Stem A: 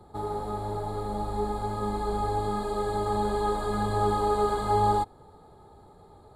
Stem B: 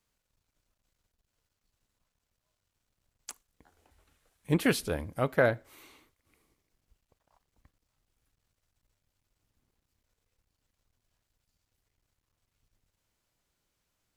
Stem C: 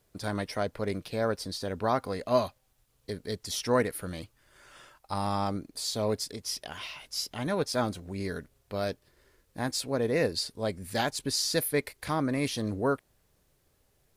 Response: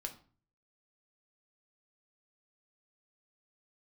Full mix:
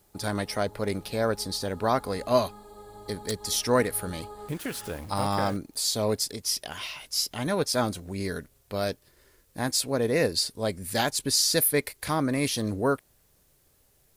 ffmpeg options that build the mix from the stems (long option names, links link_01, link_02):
-filter_complex "[0:a]volume=-18dB[link_01];[1:a]acompressor=threshold=-30dB:ratio=6,aeval=exprs='val(0)*gte(abs(val(0)),0.00531)':channel_layout=same,volume=0dB,asplit=2[link_02][link_03];[2:a]volume=2.5dB[link_04];[link_03]apad=whole_len=280062[link_05];[link_01][link_05]sidechaincompress=threshold=-48dB:ratio=8:attack=6.9:release=118[link_06];[link_06][link_02][link_04]amix=inputs=3:normalize=0,highshelf=frequency=6300:gain=8.5"